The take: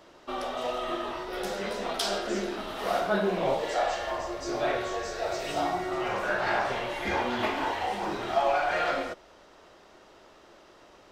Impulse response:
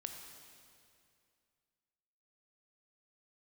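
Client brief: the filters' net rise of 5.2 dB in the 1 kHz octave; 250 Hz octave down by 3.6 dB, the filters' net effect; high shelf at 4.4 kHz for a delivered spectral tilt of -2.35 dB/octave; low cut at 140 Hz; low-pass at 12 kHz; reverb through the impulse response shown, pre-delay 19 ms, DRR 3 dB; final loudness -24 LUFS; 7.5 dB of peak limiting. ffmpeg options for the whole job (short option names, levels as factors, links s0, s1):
-filter_complex "[0:a]highpass=140,lowpass=12000,equalizer=f=250:t=o:g=-6,equalizer=f=1000:t=o:g=7.5,highshelf=f=4400:g=5,alimiter=limit=0.141:level=0:latency=1,asplit=2[s0][s1];[1:a]atrim=start_sample=2205,adelay=19[s2];[s1][s2]afir=irnorm=-1:irlink=0,volume=0.944[s3];[s0][s3]amix=inputs=2:normalize=0,volume=1.33"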